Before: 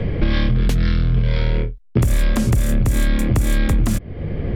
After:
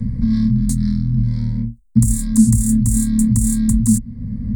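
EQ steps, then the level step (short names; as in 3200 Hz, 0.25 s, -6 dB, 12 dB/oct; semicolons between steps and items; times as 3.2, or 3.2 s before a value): EQ curve 110 Hz 0 dB, 230 Hz +9 dB, 360 Hz -28 dB, 600 Hz -21 dB, 1600 Hz -13 dB, 2500 Hz -28 dB, 4600 Hz -10 dB, 6600 Hz +14 dB, 9600 Hz +10 dB; dynamic EQ 3600 Hz, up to +6 dB, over -44 dBFS, Q 1.2; ripple EQ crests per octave 0.95, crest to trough 12 dB; -3.0 dB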